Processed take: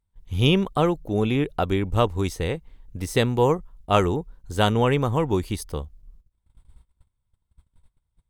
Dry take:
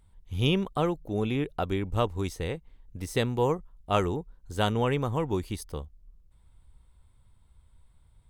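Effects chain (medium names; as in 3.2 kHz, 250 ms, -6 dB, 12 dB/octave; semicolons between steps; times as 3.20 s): gate -53 dBFS, range -23 dB; trim +6 dB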